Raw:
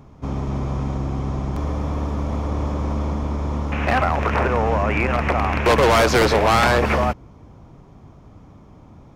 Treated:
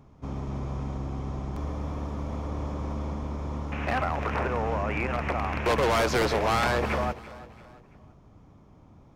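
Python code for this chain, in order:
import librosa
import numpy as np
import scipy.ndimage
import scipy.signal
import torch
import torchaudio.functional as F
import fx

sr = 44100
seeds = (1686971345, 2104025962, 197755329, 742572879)

y = fx.echo_feedback(x, sr, ms=337, feedback_pct=42, wet_db=-17.5)
y = y * 10.0 ** (-8.5 / 20.0)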